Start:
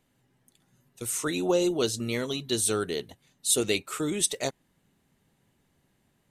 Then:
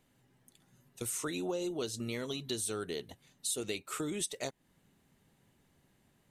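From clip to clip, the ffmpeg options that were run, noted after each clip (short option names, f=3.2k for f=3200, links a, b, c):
-af "acompressor=threshold=-35dB:ratio=4"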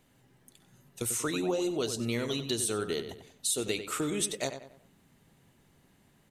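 -filter_complex "[0:a]asplit=2[a][b];[b]adelay=94,lowpass=f=3.3k:p=1,volume=-9dB,asplit=2[c][d];[d]adelay=94,lowpass=f=3.3k:p=1,volume=0.4,asplit=2[e][f];[f]adelay=94,lowpass=f=3.3k:p=1,volume=0.4,asplit=2[g][h];[h]adelay=94,lowpass=f=3.3k:p=1,volume=0.4[i];[a][c][e][g][i]amix=inputs=5:normalize=0,volume=5dB"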